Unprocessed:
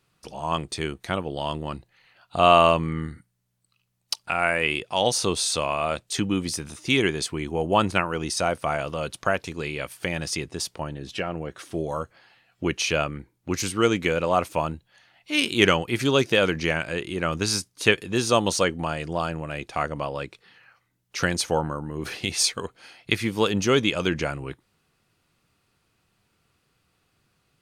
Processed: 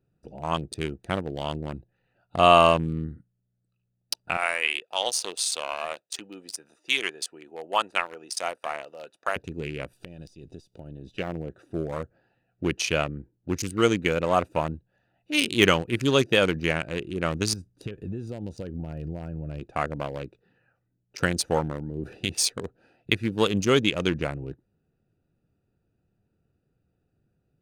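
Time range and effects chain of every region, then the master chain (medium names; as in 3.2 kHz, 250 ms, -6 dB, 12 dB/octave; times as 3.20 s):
4.37–9.36 s: high-pass 780 Hz + band-stop 1.5 kHz, Q 21
9.93–11.17 s: partial rectifier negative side -3 dB + resonant high shelf 2.6 kHz +9 dB, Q 1.5 + compression 10:1, threshold -33 dBFS
17.53–19.61 s: bass shelf 150 Hz +11 dB + band-stop 1.1 kHz, Q 17 + compression 8:1, threshold -28 dBFS
whole clip: local Wiener filter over 41 samples; de-esser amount 40%; treble shelf 7.7 kHz +6.5 dB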